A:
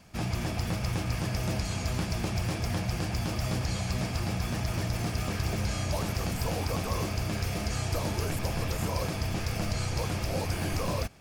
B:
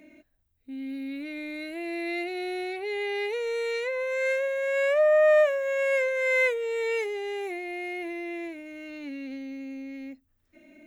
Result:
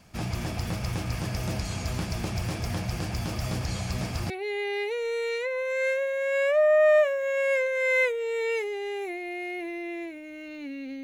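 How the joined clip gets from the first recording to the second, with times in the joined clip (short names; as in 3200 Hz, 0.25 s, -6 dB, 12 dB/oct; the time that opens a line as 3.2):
A
4.3 switch to B from 2.72 s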